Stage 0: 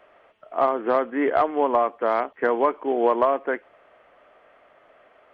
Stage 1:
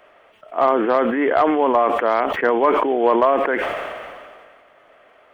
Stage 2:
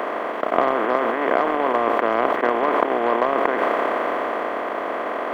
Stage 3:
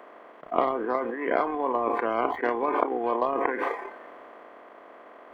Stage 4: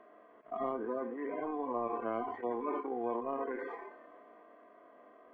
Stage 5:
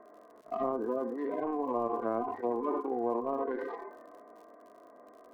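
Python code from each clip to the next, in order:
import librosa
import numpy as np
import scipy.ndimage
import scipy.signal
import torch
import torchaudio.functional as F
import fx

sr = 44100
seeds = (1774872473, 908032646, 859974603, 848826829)

y1 = fx.high_shelf(x, sr, hz=3400.0, db=7.5)
y1 = fx.sustainer(y1, sr, db_per_s=29.0)
y1 = y1 * 10.0 ** (2.5 / 20.0)
y2 = fx.bin_compress(y1, sr, power=0.2)
y2 = fx.highpass(y2, sr, hz=270.0, slope=6)
y2 = fx.transient(y2, sr, attack_db=6, sustain_db=-7)
y2 = y2 * 10.0 ** (-10.0 / 20.0)
y3 = fx.noise_reduce_blind(y2, sr, reduce_db=18)
y3 = y3 * 10.0 ** (-4.5 / 20.0)
y4 = fx.hpss_only(y3, sr, part='harmonic')
y4 = fx.lowpass(y4, sr, hz=2100.0, slope=6)
y4 = fx.low_shelf(y4, sr, hz=240.0, db=7.5)
y4 = y4 * 10.0 ** (-8.5 / 20.0)
y5 = fx.wiener(y4, sr, points=15)
y5 = fx.env_lowpass_down(y5, sr, base_hz=1300.0, full_db=-32.5)
y5 = fx.dmg_crackle(y5, sr, seeds[0], per_s=73.0, level_db=-56.0)
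y5 = y5 * 10.0 ** (4.5 / 20.0)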